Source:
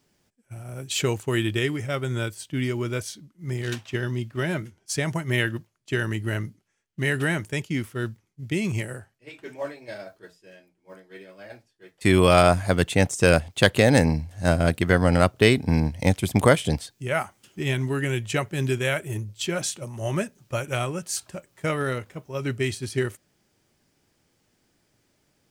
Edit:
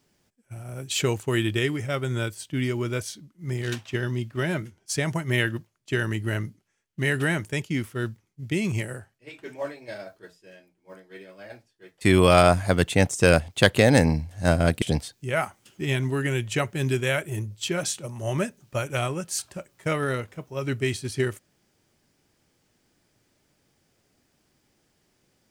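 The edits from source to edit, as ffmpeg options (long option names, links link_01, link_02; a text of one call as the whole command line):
ffmpeg -i in.wav -filter_complex "[0:a]asplit=2[link_01][link_02];[link_01]atrim=end=14.822[link_03];[link_02]atrim=start=16.598[link_04];[link_03][link_04]acrossfade=duration=0.004:curve1=hsin:curve2=hsin" out.wav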